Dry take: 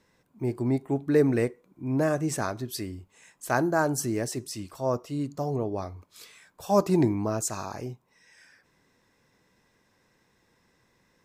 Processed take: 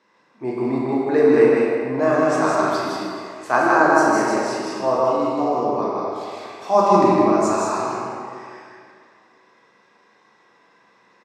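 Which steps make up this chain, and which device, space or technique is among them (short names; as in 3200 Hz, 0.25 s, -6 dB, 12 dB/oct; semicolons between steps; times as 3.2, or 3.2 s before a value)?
station announcement (BPF 330–4500 Hz; bell 1100 Hz +6 dB 0.58 oct; loudspeakers at several distances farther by 13 m -11 dB, 54 m -3 dB, 67 m -5 dB; reverb RT60 2.2 s, pre-delay 8 ms, DRR -3.5 dB); gain +3 dB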